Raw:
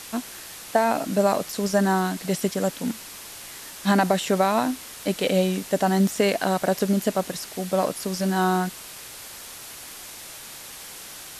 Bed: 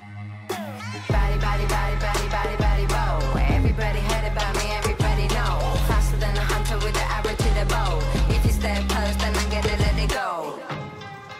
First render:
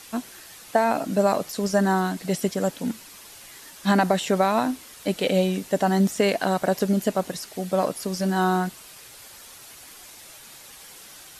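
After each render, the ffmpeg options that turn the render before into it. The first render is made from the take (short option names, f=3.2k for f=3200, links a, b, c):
-af "afftdn=nr=7:nf=-41"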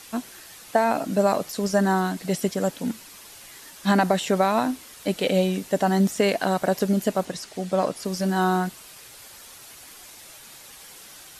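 -filter_complex "[0:a]asettb=1/sr,asplit=3[a][b][c];[a]atrim=end=7.254[d];[b]atrim=start=7.25:end=8.05,asetpts=PTS-STARTPTS,afade=t=in:d=0.004:c=qsin,afade=t=out:st=0.796:d=0.004:c=qsin,lowpass=9k[e];[c]atrim=start=8.046[f];[d][e]acrossfade=d=0.004:c1=hsin:c2=qsin[g];[g][f]acrossfade=d=0.004:c1=qsin:c2=hsin"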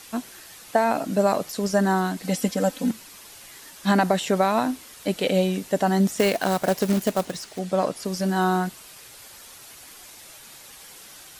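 -filter_complex "[0:a]asettb=1/sr,asplit=3[a][b][c];[a]atrim=end=2.234[d];[b]atrim=start=2.23:end=2.91,asetpts=PTS-STARTPTS,afade=t=in:d=0.004:c=qsin,afade=t=out:st=0.676:d=0.004:c=qsin,aecho=1:1:3.9:0.72,atrim=end_sample=29988[e];[c]atrim=start=2.906[f];[d][e]acrossfade=d=0.004:c1=hsin:c2=qsin[g];[g][f]acrossfade=d=0.004:c1=qsin:c2=hsin,asettb=1/sr,asplit=3[h][i][j];[h]atrim=end=6.184[k];[i]atrim=start=6.18:end=7.59,asetpts=PTS-STARTPTS,afade=t=in:d=0.004:c=qsin,afade=t=out:st=1.406:d=0.004:c=qsin,acrusher=bits=3:mode=log:mix=0:aa=0.000001[l];[j]atrim=start=7.586[m];[k][l]acrossfade=d=0.004:c1=hsin:c2=qsin[n];[n][m]acrossfade=d=0.004:c1=qsin:c2=hsin"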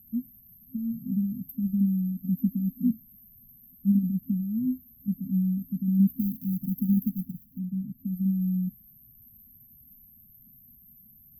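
-af "afftfilt=real='re*(1-between(b*sr/4096,260,12000))':imag='im*(1-between(b*sr/4096,260,12000))':win_size=4096:overlap=0.75"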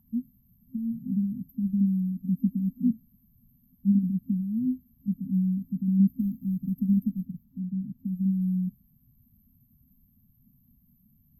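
-af "lowpass=6.8k,equalizer=f=920:w=2.4:g=13.5"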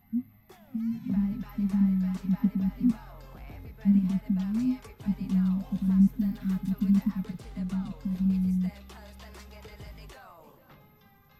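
-filter_complex "[1:a]volume=-24.5dB[a];[0:a][a]amix=inputs=2:normalize=0"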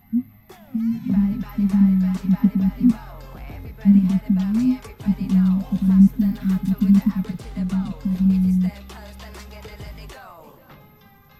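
-af "volume=8.5dB"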